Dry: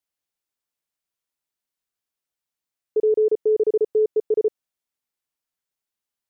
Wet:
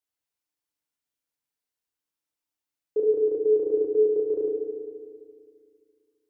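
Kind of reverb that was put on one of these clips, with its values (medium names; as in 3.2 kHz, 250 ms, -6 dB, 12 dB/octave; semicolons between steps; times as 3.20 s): FDN reverb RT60 2.1 s, low-frequency decay 1.25×, high-frequency decay 0.9×, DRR 1 dB; trim -4.5 dB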